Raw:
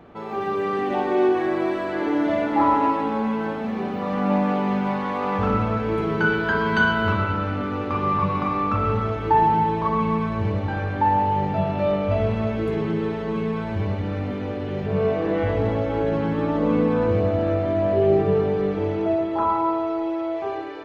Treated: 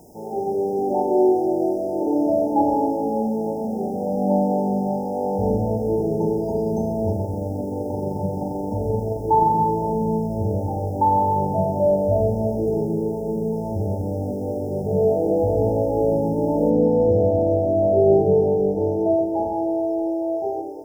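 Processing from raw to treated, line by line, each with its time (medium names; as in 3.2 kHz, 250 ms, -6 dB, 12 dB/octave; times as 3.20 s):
7.12–9.60 s: AM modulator 23 Hz, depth 15%
12.87–13.53 s: distance through air 480 m
16.70 s: noise floor step -56 dB -66 dB
whole clip: FFT band-reject 930–4900 Hz; dynamic bell 530 Hz, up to +5 dB, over -37 dBFS, Q 1.5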